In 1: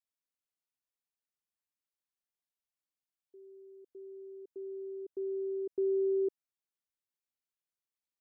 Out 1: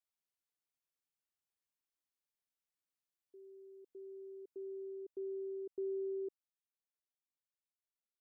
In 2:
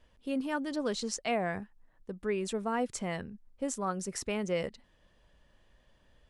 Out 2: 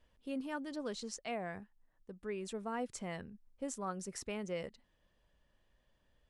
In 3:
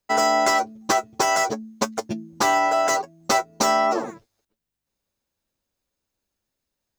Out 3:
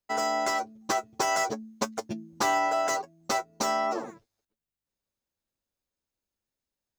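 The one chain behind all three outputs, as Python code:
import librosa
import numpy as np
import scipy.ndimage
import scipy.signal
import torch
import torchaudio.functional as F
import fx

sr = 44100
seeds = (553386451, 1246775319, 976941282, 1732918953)

y = fx.rider(x, sr, range_db=5, speed_s=2.0)
y = y * 10.0 ** (-7.5 / 20.0)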